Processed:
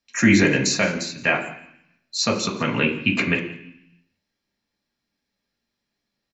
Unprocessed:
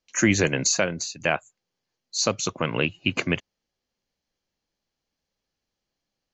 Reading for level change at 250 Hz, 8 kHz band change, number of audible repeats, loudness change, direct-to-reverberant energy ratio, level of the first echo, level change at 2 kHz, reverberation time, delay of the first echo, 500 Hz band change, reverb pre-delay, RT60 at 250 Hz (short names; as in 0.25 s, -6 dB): +6.0 dB, -2.5 dB, 1, +4.0 dB, -0.5 dB, -19.5 dB, +5.5 dB, 0.70 s, 0.17 s, +1.5 dB, 3 ms, 1.0 s